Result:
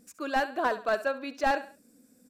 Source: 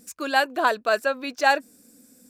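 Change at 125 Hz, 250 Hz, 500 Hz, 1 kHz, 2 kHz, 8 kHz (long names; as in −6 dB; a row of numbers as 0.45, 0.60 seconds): can't be measured, −3.0 dB, −5.0 dB, −6.0 dB, −8.5 dB, −10.5 dB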